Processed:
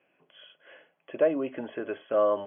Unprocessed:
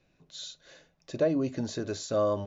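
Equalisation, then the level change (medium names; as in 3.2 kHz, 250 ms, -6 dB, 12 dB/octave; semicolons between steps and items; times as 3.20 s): high-pass 400 Hz 12 dB/octave; brick-wall FIR low-pass 3.4 kHz; +4.0 dB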